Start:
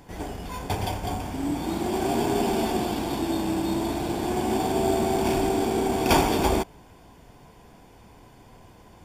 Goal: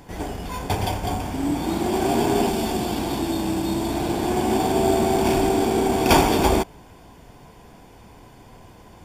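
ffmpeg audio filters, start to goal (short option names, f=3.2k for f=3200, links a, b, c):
-filter_complex "[0:a]asettb=1/sr,asplit=3[a][b][c];[a]atrim=end=2.474[d];[b]atrim=start=2.47:end=3.94,asetpts=PTS-STARTPTS,afade=t=in:d=0.004:c=qsin,afade=t=out:st=1.466:d=0.004:c=qsin,acrossover=split=210|3000[e][f][g];[f]acompressor=threshold=-27dB:ratio=6[h];[e][h][g]amix=inputs=3:normalize=0[i];[c]atrim=start=3.936[j];[d][i]acrossfade=d=0.004:c1=hsin:c2=qsin[k];[k][j]acrossfade=d=0.004:c1=qsin:c2=hsin,volume=4dB"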